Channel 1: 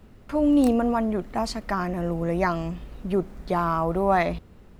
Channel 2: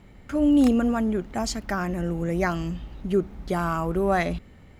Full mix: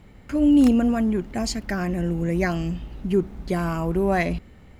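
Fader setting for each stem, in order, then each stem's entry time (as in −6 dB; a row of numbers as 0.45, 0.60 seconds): −6.5, +0.5 decibels; 0.00, 0.00 seconds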